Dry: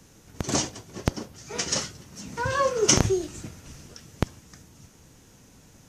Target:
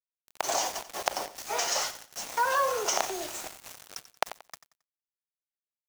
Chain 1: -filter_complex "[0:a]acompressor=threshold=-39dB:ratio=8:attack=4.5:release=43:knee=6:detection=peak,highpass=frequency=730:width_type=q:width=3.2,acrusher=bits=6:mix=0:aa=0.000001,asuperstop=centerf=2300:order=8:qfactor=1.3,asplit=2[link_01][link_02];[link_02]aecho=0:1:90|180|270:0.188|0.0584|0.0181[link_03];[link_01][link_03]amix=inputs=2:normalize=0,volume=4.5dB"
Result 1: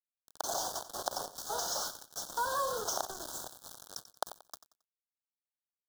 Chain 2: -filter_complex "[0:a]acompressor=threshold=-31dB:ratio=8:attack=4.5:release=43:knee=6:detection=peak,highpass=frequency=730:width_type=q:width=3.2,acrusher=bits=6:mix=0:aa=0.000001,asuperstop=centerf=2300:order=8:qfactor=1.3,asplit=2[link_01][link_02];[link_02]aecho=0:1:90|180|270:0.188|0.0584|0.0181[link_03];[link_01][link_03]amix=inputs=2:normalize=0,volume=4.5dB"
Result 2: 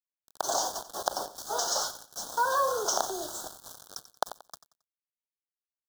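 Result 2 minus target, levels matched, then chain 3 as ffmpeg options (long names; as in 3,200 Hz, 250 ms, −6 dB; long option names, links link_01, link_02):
2,000 Hz band −4.0 dB
-filter_complex "[0:a]acompressor=threshold=-31dB:ratio=8:attack=4.5:release=43:knee=6:detection=peak,highpass=frequency=730:width_type=q:width=3.2,acrusher=bits=6:mix=0:aa=0.000001,asplit=2[link_01][link_02];[link_02]aecho=0:1:90|180|270:0.188|0.0584|0.0181[link_03];[link_01][link_03]amix=inputs=2:normalize=0,volume=4.5dB"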